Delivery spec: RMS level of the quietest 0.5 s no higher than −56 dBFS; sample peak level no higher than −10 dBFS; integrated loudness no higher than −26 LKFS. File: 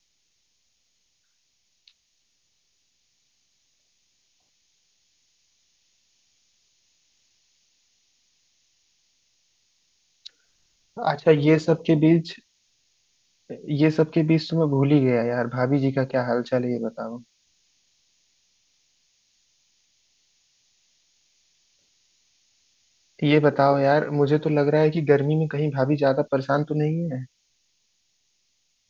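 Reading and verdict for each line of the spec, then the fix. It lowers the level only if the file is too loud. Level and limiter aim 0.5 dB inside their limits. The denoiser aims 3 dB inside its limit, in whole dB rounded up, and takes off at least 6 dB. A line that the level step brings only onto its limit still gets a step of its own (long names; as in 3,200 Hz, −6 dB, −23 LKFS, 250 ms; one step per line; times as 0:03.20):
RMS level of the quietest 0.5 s −70 dBFS: in spec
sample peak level −4.0 dBFS: out of spec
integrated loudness −21.5 LKFS: out of spec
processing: level −5 dB
brickwall limiter −10.5 dBFS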